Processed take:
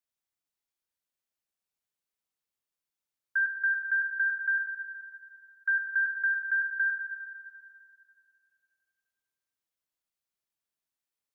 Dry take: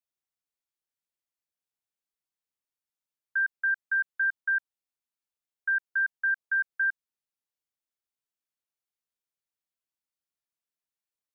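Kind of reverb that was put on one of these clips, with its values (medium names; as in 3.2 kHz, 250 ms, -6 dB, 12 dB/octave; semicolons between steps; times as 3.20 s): Schroeder reverb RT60 2.3 s, combs from 30 ms, DRR 4 dB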